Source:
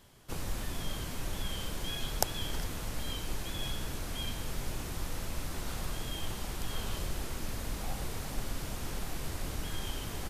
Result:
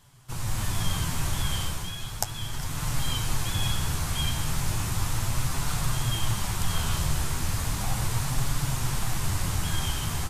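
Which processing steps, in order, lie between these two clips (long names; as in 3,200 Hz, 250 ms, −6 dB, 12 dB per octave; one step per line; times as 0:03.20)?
octave-band graphic EQ 125/250/500/1,000/8,000 Hz +10/−5/−7/+5/+5 dB
automatic gain control gain up to 8 dB
flanger 0.35 Hz, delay 6.6 ms, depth 7 ms, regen +50%
level +3.5 dB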